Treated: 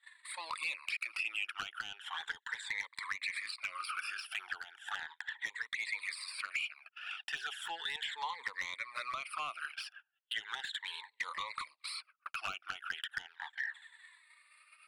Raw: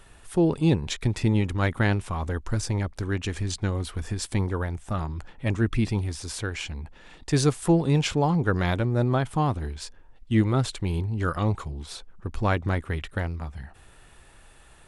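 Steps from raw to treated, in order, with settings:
rippled gain that drifts along the octave scale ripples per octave 1, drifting +0.36 Hz, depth 17 dB
de-essing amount 75%
high-pass filter 1,500 Hz 24 dB per octave
noise gate −53 dBFS, range −26 dB
downward compressor 6 to 1, threshold −41 dBFS, peak gain reduction 16 dB
moving average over 7 samples
soft clipping −38.5 dBFS, distortion −14 dB
flanger swept by the level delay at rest 3.7 ms, full sweep at −44.5 dBFS
level +14 dB

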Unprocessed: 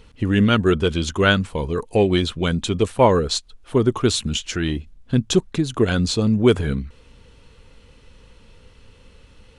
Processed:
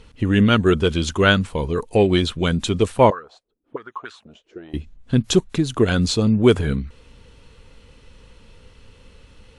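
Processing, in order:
0:03.10–0:04.74: envelope filter 220–1,700 Hz, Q 4.9, up, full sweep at −13 dBFS
level +1 dB
WMA 128 kbit/s 48,000 Hz

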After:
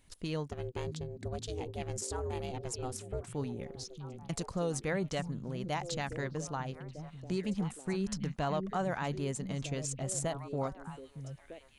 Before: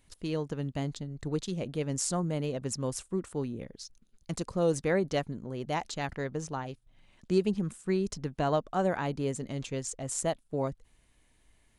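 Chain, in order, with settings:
dynamic equaliser 370 Hz, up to −6 dB, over −42 dBFS, Q 0.99
brickwall limiter −24.5 dBFS, peak gain reduction 9.5 dB
0:00.49–0:03.27: ring modulation 250 Hz
echo through a band-pass that steps 628 ms, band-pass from 150 Hz, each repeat 1.4 octaves, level −4.5 dB

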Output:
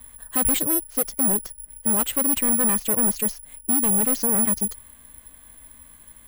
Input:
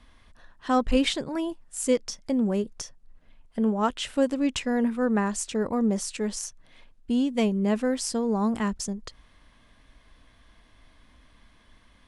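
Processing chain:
phase-vocoder stretch with locked phases 0.52×
gain into a clipping stage and back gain 29 dB
high-frequency loss of the air 87 metres
bad sample-rate conversion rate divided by 4×, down filtered, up zero stuff
level +5 dB

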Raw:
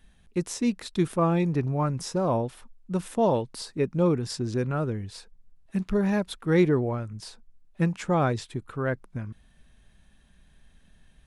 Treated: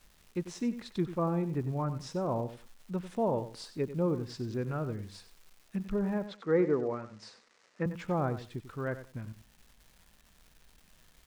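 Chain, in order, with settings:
treble cut that deepens with the level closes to 1,400 Hz, closed at −20 dBFS
surface crackle 530 per second −43 dBFS
0:06.27–0:07.86: loudspeaker in its box 200–7,000 Hz, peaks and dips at 490 Hz +7 dB, 1,200 Hz +5 dB, 1,900 Hz +5 dB, 3,400 Hz −4 dB
repeating echo 94 ms, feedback 18%, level −12.5 dB
level −7 dB

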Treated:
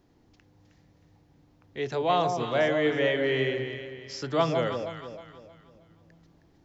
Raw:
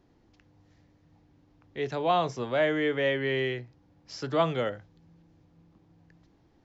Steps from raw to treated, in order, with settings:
high-shelf EQ 5,600 Hz +6.5 dB
delay that swaps between a low-pass and a high-pass 157 ms, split 920 Hz, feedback 61%, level −4 dB

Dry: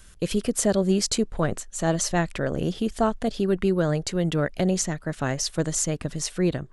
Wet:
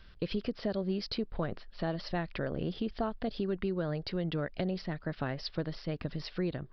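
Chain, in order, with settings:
downward compressor 3 to 1, threshold −27 dBFS, peak gain reduction 8.5 dB
downsampling to 11,025 Hz
level −4 dB

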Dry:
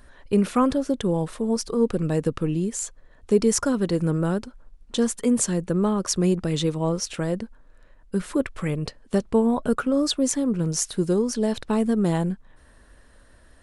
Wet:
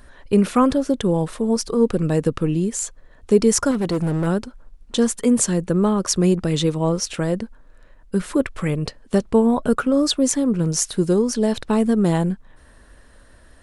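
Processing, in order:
0:03.71–0:04.27: gain into a clipping stage and back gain 21 dB
level +4 dB

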